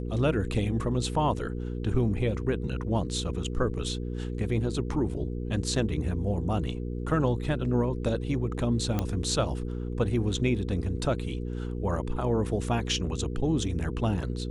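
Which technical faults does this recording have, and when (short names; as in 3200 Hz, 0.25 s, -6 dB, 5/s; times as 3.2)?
hum 60 Hz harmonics 8 -33 dBFS
8.99 pop -14 dBFS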